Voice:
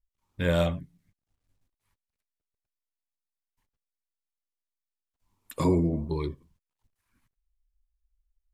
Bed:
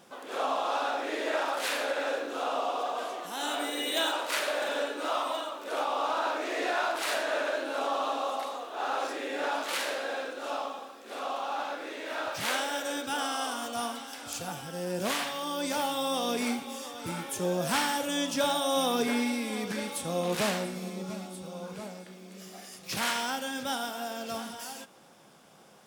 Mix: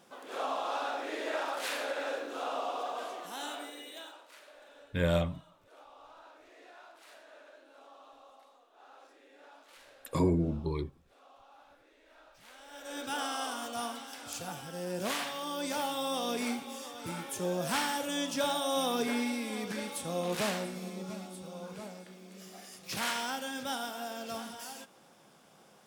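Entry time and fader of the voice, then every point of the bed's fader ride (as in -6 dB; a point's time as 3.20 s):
4.55 s, -3.5 dB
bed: 3.34 s -4.5 dB
4.33 s -25 dB
12.55 s -25 dB
13.03 s -3.5 dB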